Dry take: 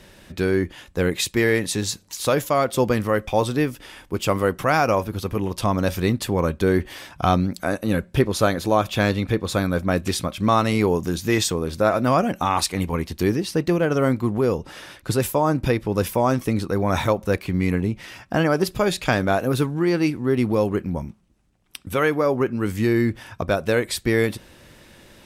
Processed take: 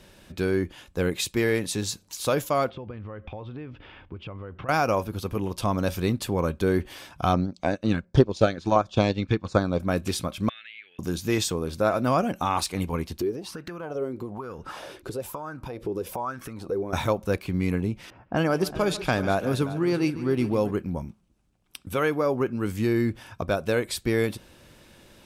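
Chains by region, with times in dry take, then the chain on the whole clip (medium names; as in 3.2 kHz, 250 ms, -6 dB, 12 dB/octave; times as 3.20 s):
2.70–4.69 s: peaking EQ 86 Hz +10.5 dB 0.9 oct + compression 12:1, threshold -29 dBFS + low-pass 3.1 kHz 24 dB/octave
7.33–9.80 s: LFO notch saw down 1.4 Hz 380–3800 Hz + low-pass 6.7 kHz 24 dB/octave + transient shaper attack +7 dB, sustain -9 dB
10.49–10.99 s: elliptic band-pass 1.7–3.5 kHz + compression 2.5:1, threshold -37 dBFS
13.21–16.93 s: compression 12:1, threshold -30 dBFS + sweeping bell 1.1 Hz 360–1600 Hz +17 dB
18.10–20.71 s: level-controlled noise filter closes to 790 Hz, open at -16 dBFS + multi-tap echo 145/381 ms -16/-14.5 dB
whole clip: de-esser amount 35%; peaking EQ 1.9 kHz -6 dB 0.2 oct; trim -4 dB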